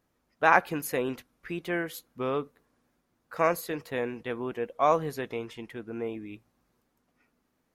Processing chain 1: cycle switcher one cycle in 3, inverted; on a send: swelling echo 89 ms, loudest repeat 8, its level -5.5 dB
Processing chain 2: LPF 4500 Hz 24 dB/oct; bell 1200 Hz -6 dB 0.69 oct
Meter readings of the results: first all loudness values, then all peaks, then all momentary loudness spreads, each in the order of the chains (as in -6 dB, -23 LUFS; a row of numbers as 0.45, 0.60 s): -24.0, -31.5 LUFS; -5.0, -7.5 dBFS; 6, 15 LU